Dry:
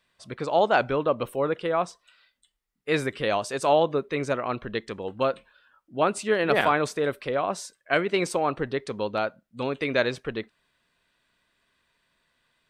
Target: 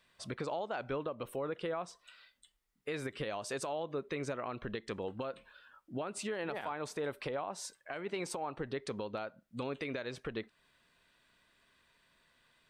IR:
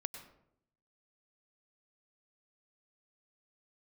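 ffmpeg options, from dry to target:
-filter_complex "[0:a]asettb=1/sr,asplit=3[link_01][link_02][link_03];[link_01]atrim=end=6.334[link_04];[link_02]atrim=start=6.33:end=8.61,asetpts=PTS-STARTPTS,afade=type=in:duration=0.004:curve=qsin,afade=type=out:start_time=2.276:duration=0.004:curve=qsin,equalizer=frequency=860:width_type=o:width=0.33:gain=7.5[link_05];[link_03]atrim=start=8.606[link_06];[link_04][link_05]acrossfade=duration=0.004:curve1=hsin:curve2=qsin[link_07];[link_07][link_06]acrossfade=duration=0.004:curve1=qsin:curve2=hsin,acompressor=threshold=-29dB:ratio=6,alimiter=level_in=5dB:limit=-24dB:level=0:latency=1:release=288,volume=-5dB,volume=1dB"

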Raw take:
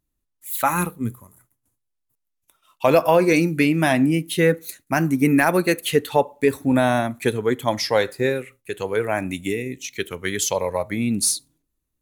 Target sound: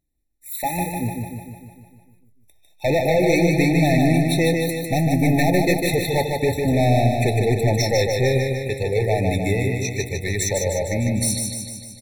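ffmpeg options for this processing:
ffmpeg -i in.wav -af "asubboost=boost=6:cutoff=100,dynaudnorm=framelen=420:gausssize=11:maxgain=11.5dB,volume=16dB,asoftclip=hard,volume=-16dB,aecho=1:1:151|302|453|604|755|906|1057|1208|1359:0.631|0.379|0.227|0.136|0.0818|0.0491|0.0294|0.0177|0.0106,afftfilt=real='re*eq(mod(floor(b*sr/1024/880),2),0)':imag='im*eq(mod(floor(b*sr/1024/880),2),0)':win_size=1024:overlap=0.75" out.wav

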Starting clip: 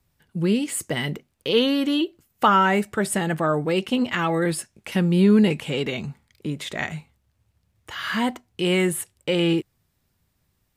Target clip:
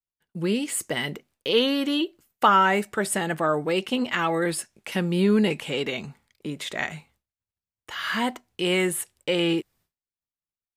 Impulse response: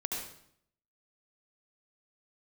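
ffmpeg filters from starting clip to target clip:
-af "agate=range=-33dB:threshold=-51dB:ratio=3:detection=peak,equalizer=frequency=95:width=0.52:gain=-9"

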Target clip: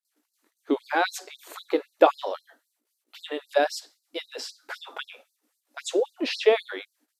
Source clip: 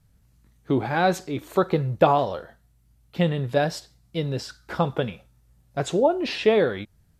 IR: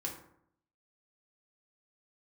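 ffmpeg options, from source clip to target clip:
-af "aeval=exprs='val(0)+0.00178*(sin(2*PI*60*n/s)+sin(2*PI*2*60*n/s)/2+sin(2*PI*3*60*n/s)/3+sin(2*PI*4*60*n/s)/4+sin(2*PI*5*60*n/s)/5)':channel_layout=same,agate=range=-20dB:threshold=-54dB:ratio=16:detection=peak,afftfilt=real='re*gte(b*sr/1024,240*pow(4100/240,0.5+0.5*sin(2*PI*3.8*pts/sr)))':imag='im*gte(b*sr/1024,240*pow(4100/240,0.5+0.5*sin(2*PI*3.8*pts/sr)))':win_size=1024:overlap=0.75,volume=1dB"

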